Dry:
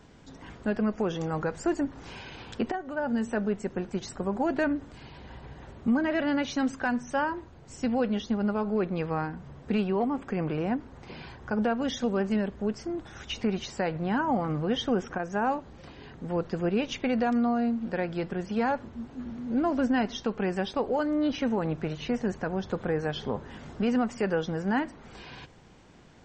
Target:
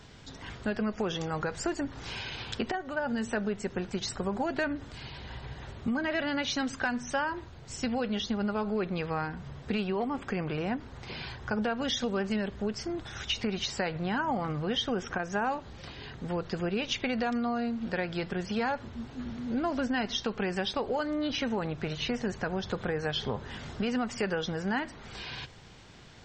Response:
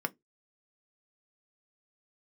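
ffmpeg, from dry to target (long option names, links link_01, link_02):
-filter_complex "[0:a]equalizer=frequency=125:width_type=o:width=1:gain=4,equalizer=frequency=250:width_type=o:width=1:gain=-6,equalizer=frequency=500:width_type=o:width=1:gain=-3,equalizer=frequency=1000:width_type=o:width=1:gain=-3,equalizer=frequency=4000:width_type=o:width=1:gain=6,acompressor=threshold=-32dB:ratio=3,asplit=2[link_01][link_02];[1:a]atrim=start_sample=2205[link_03];[link_02][link_03]afir=irnorm=-1:irlink=0,volume=-16dB[link_04];[link_01][link_04]amix=inputs=2:normalize=0,volume=3dB"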